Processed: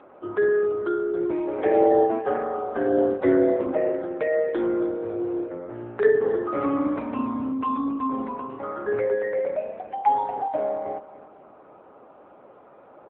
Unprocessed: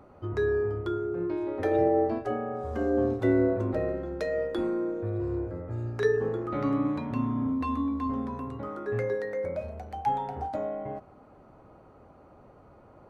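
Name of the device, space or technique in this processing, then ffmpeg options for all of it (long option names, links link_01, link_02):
telephone: -filter_complex "[0:a]aecho=1:1:276|552|828:0.141|0.0452|0.0145,asplit=3[link_01][link_02][link_03];[link_01]afade=type=out:start_time=6.57:duration=0.02[link_04];[link_02]adynamicequalizer=threshold=0.00501:dfrequency=370:dqfactor=4.7:tfrequency=370:tqfactor=4.7:attack=5:release=100:ratio=0.375:range=2:mode=cutabove:tftype=bell,afade=type=in:start_time=6.57:duration=0.02,afade=type=out:start_time=8.04:duration=0.02[link_05];[link_03]afade=type=in:start_time=8.04:duration=0.02[link_06];[link_04][link_05][link_06]amix=inputs=3:normalize=0,highpass=330,lowpass=3600,volume=7.5dB" -ar 8000 -c:a libopencore_amrnb -b:a 7950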